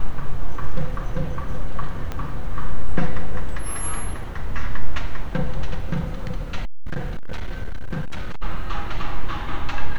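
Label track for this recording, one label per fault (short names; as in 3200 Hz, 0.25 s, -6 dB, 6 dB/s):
2.120000	2.120000	pop -15 dBFS
6.650000	8.430000	clipped -19.5 dBFS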